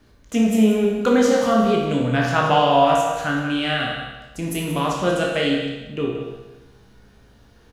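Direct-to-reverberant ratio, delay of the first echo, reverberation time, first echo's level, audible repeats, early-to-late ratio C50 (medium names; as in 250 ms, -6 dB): -3.0 dB, 182 ms, 1.1 s, -9.0 dB, 1, 0.5 dB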